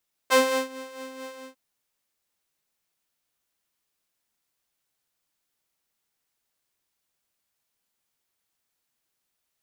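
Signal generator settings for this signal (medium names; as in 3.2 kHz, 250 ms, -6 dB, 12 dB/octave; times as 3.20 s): synth patch with tremolo C5, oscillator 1 saw, oscillator 2 square, interval -12 st, oscillator 2 level -11.5 dB, filter highpass, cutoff 100 Hz, Q 1.1, filter envelope 3.5 oct, filter decay 0.10 s, attack 24 ms, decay 0.36 s, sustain -22 dB, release 0.17 s, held 1.08 s, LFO 4.5 Hz, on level 6.5 dB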